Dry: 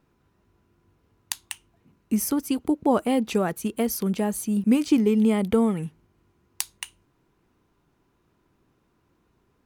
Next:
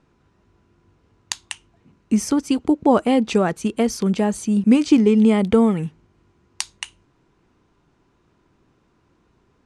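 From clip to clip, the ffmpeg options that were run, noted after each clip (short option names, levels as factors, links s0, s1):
-af "lowpass=f=8100:w=0.5412,lowpass=f=8100:w=1.3066,volume=1.88"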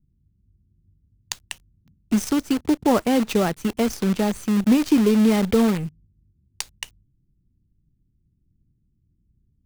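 -filter_complex "[0:a]lowshelf=f=67:g=7.5,acrossover=split=210[s0][s1];[s1]acrusher=bits=5:dc=4:mix=0:aa=0.000001[s2];[s0][s2]amix=inputs=2:normalize=0,asoftclip=type=tanh:threshold=0.531,volume=0.794"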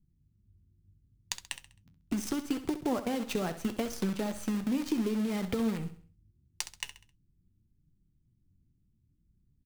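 -filter_complex "[0:a]acompressor=threshold=0.0631:ratio=6,flanger=delay=5.1:depth=7.1:regen=63:speed=0.75:shape=triangular,asplit=2[s0][s1];[s1]aecho=0:1:66|132|198|264:0.251|0.098|0.0382|0.0149[s2];[s0][s2]amix=inputs=2:normalize=0"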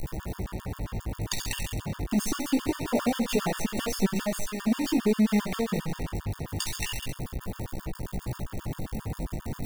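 -af "aeval=exprs='val(0)+0.5*0.0355*sgn(val(0))':c=same,flanger=delay=15.5:depth=4.5:speed=0.26,afftfilt=real='re*gt(sin(2*PI*7.5*pts/sr)*(1-2*mod(floor(b*sr/1024/910),2)),0)':imag='im*gt(sin(2*PI*7.5*pts/sr)*(1-2*mod(floor(b*sr/1024/910),2)),0)':win_size=1024:overlap=0.75,volume=2.37"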